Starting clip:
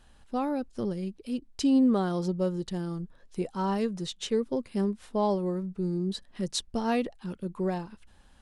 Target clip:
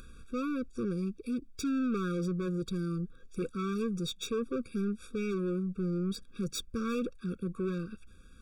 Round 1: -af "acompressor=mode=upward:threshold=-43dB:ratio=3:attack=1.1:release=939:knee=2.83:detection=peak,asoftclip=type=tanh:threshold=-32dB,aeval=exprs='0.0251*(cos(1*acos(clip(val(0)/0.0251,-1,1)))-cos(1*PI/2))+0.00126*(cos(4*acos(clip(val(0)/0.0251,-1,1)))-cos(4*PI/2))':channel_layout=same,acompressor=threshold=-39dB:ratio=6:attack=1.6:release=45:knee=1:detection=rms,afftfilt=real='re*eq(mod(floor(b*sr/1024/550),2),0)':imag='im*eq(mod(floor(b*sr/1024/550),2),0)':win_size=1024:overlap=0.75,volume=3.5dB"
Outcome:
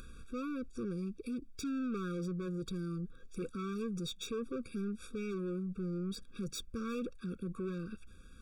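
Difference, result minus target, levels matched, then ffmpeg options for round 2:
downward compressor: peak gain reduction +6 dB
-af "acompressor=mode=upward:threshold=-43dB:ratio=3:attack=1.1:release=939:knee=2.83:detection=peak,asoftclip=type=tanh:threshold=-32dB,aeval=exprs='0.0251*(cos(1*acos(clip(val(0)/0.0251,-1,1)))-cos(1*PI/2))+0.00126*(cos(4*acos(clip(val(0)/0.0251,-1,1)))-cos(4*PI/2))':channel_layout=same,afftfilt=real='re*eq(mod(floor(b*sr/1024/550),2),0)':imag='im*eq(mod(floor(b*sr/1024/550),2),0)':win_size=1024:overlap=0.75,volume=3.5dB"

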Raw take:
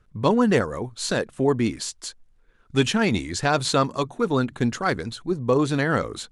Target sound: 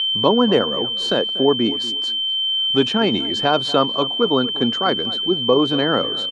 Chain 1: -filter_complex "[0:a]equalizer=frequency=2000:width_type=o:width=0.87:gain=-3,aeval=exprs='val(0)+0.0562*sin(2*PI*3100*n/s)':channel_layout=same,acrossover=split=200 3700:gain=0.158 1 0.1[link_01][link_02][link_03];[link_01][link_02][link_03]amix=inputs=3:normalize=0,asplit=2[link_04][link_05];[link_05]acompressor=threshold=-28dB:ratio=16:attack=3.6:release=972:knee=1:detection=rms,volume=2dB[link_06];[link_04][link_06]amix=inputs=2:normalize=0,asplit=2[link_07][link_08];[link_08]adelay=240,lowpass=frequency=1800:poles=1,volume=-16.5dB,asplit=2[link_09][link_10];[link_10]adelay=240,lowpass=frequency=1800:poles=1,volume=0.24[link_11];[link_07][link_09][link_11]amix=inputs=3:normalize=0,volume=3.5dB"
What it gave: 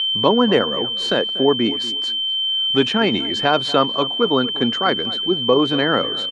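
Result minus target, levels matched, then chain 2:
2,000 Hz band +3.5 dB
-filter_complex "[0:a]equalizer=frequency=2000:width_type=o:width=0.87:gain=-9,aeval=exprs='val(0)+0.0562*sin(2*PI*3100*n/s)':channel_layout=same,acrossover=split=200 3700:gain=0.158 1 0.1[link_01][link_02][link_03];[link_01][link_02][link_03]amix=inputs=3:normalize=0,asplit=2[link_04][link_05];[link_05]acompressor=threshold=-28dB:ratio=16:attack=3.6:release=972:knee=1:detection=rms,volume=2dB[link_06];[link_04][link_06]amix=inputs=2:normalize=0,asplit=2[link_07][link_08];[link_08]adelay=240,lowpass=frequency=1800:poles=1,volume=-16.5dB,asplit=2[link_09][link_10];[link_10]adelay=240,lowpass=frequency=1800:poles=1,volume=0.24[link_11];[link_07][link_09][link_11]amix=inputs=3:normalize=0,volume=3.5dB"

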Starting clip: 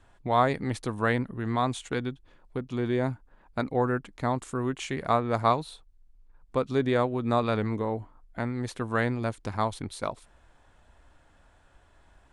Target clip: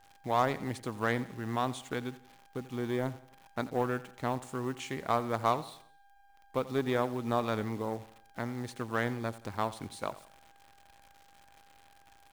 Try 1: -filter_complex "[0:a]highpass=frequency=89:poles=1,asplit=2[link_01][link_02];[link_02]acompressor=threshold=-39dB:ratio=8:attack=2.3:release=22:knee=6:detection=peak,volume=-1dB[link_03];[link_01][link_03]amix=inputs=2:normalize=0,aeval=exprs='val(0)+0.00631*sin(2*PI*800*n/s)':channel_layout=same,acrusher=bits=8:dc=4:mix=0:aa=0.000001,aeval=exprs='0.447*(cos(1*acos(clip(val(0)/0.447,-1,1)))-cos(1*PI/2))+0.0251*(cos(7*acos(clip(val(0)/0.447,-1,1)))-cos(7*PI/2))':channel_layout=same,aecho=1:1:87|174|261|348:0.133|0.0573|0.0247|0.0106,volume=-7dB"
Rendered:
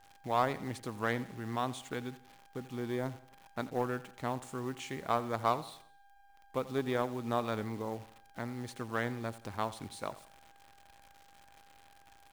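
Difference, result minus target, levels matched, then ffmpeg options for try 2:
downward compressor: peak gain reduction +10 dB
-filter_complex "[0:a]highpass=frequency=89:poles=1,asplit=2[link_01][link_02];[link_02]acompressor=threshold=-27.5dB:ratio=8:attack=2.3:release=22:knee=6:detection=peak,volume=-1dB[link_03];[link_01][link_03]amix=inputs=2:normalize=0,aeval=exprs='val(0)+0.00631*sin(2*PI*800*n/s)':channel_layout=same,acrusher=bits=8:dc=4:mix=0:aa=0.000001,aeval=exprs='0.447*(cos(1*acos(clip(val(0)/0.447,-1,1)))-cos(1*PI/2))+0.0251*(cos(7*acos(clip(val(0)/0.447,-1,1)))-cos(7*PI/2))':channel_layout=same,aecho=1:1:87|174|261|348:0.133|0.0573|0.0247|0.0106,volume=-7dB"

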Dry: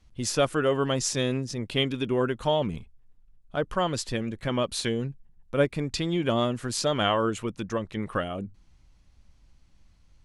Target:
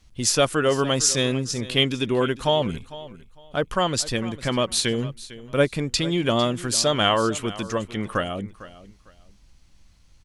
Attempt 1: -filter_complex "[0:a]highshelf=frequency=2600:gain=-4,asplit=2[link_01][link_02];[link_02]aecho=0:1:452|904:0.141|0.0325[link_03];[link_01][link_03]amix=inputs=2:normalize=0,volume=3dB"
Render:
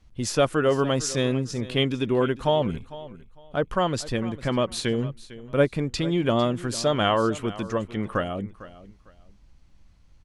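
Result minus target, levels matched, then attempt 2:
4,000 Hz band −5.0 dB
-filter_complex "[0:a]highshelf=frequency=2600:gain=7,asplit=2[link_01][link_02];[link_02]aecho=0:1:452|904:0.141|0.0325[link_03];[link_01][link_03]amix=inputs=2:normalize=0,volume=3dB"

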